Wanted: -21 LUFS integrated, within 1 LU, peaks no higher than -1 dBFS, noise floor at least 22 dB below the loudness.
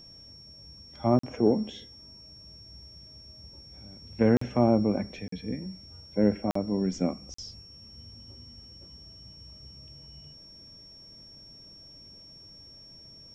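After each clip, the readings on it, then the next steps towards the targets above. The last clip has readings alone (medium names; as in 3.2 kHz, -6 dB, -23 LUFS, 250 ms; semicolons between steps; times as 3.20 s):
dropouts 5; longest dropout 44 ms; steady tone 5.5 kHz; tone level -48 dBFS; loudness -27.5 LUFS; peak level -10.5 dBFS; loudness target -21.0 LUFS
-> interpolate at 1.19/4.37/5.28/6.51/7.34 s, 44 ms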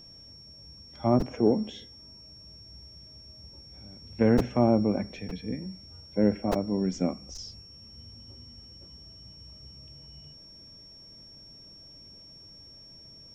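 dropouts 0; steady tone 5.5 kHz; tone level -48 dBFS
-> band-stop 5.5 kHz, Q 30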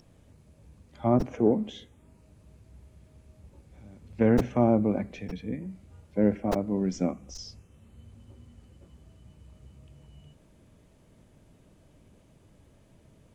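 steady tone not found; loudness -27.5 LUFS; peak level -10.5 dBFS; loudness target -21.0 LUFS
-> trim +6.5 dB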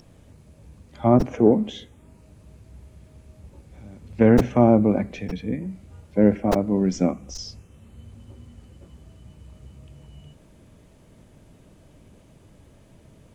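loudness -21.0 LUFS; peak level -4.0 dBFS; noise floor -53 dBFS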